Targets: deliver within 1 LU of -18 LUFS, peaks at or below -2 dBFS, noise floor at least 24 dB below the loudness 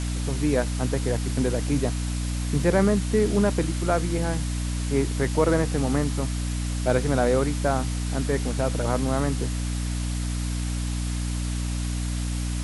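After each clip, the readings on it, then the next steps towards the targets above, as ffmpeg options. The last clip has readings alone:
hum 60 Hz; harmonics up to 300 Hz; hum level -25 dBFS; noise floor -28 dBFS; noise floor target -50 dBFS; loudness -25.5 LUFS; peak -7.5 dBFS; loudness target -18.0 LUFS
-> -af "bandreject=f=60:t=h:w=4,bandreject=f=120:t=h:w=4,bandreject=f=180:t=h:w=4,bandreject=f=240:t=h:w=4,bandreject=f=300:t=h:w=4"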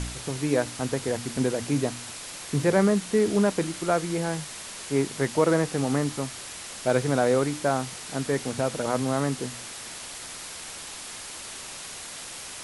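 hum none; noise floor -40 dBFS; noise floor target -52 dBFS
-> -af "afftdn=nr=12:nf=-40"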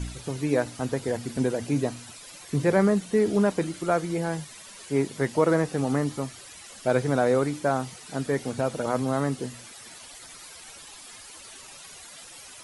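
noise floor -46 dBFS; noise floor target -51 dBFS
-> -af "afftdn=nr=6:nf=-46"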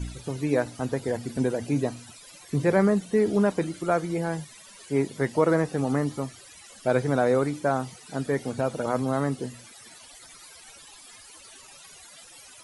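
noise floor -49 dBFS; noise floor target -51 dBFS
-> -af "afftdn=nr=6:nf=-49"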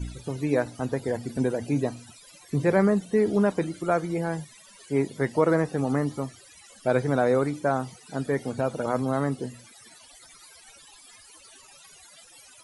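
noise floor -52 dBFS; loudness -26.5 LUFS; peak -8.5 dBFS; loudness target -18.0 LUFS
-> -af "volume=8.5dB,alimiter=limit=-2dB:level=0:latency=1"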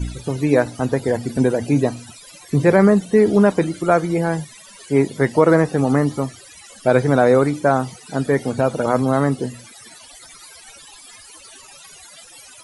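loudness -18.0 LUFS; peak -2.0 dBFS; noise floor -44 dBFS

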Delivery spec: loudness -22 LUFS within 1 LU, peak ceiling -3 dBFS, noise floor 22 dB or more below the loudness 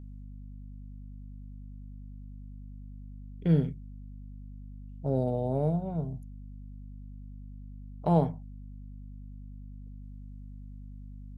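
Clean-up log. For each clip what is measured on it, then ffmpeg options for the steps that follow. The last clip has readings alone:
hum 50 Hz; harmonics up to 250 Hz; hum level -42 dBFS; loudness -30.0 LUFS; peak -11.0 dBFS; loudness target -22.0 LUFS
-> -af "bandreject=f=50:t=h:w=4,bandreject=f=100:t=h:w=4,bandreject=f=150:t=h:w=4,bandreject=f=200:t=h:w=4,bandreject=f=250:t=h:w=4"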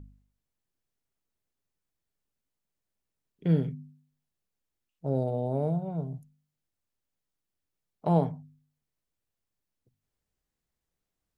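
hum none; loudness -30.0 LUFS; peak -11.5 dBFS; loudness target -22.0 LUFS
-> -af "volume=8dB"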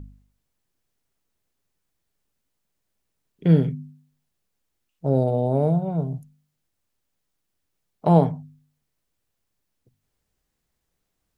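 loudness -22.0 LUFS; peak -3.5 dBFS; noise floor -78 dBFS

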